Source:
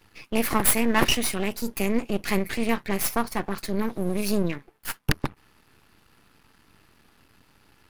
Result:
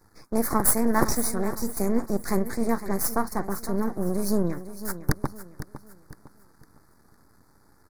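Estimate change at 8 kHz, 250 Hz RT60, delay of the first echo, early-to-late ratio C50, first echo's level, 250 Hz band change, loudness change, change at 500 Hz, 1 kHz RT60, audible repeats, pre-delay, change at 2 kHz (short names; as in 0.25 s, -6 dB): 0.0 dB, none, 0.507 s, none, -13.0 dB, 0.0 dB, -0.5 dB, 0.0 dB, none, 3, none, -7.0 dB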